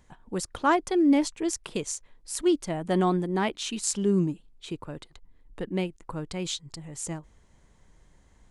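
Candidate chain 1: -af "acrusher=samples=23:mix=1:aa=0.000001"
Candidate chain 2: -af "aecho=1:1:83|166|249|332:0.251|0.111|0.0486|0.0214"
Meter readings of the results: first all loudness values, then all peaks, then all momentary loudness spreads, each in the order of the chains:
−27.5, −28.0 LKFS; −13.5, −9.0 dBFS; 17, 16 LU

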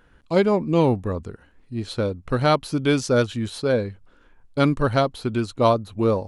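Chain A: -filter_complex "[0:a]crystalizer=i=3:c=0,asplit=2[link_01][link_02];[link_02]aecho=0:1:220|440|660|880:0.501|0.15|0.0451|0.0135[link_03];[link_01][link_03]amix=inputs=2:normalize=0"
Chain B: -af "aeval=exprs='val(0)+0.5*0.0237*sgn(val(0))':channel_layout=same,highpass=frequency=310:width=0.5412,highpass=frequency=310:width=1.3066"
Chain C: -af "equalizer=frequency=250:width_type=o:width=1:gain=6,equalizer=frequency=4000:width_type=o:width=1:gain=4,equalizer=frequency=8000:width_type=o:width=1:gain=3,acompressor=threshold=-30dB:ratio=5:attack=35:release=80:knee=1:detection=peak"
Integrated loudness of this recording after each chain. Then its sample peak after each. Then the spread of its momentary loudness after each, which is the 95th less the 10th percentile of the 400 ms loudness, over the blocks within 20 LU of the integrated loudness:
−20.5, −23.5, −30.0 LKFS; −3.0, −4.0, −13.5 dBFS; 13, 15, 7 LU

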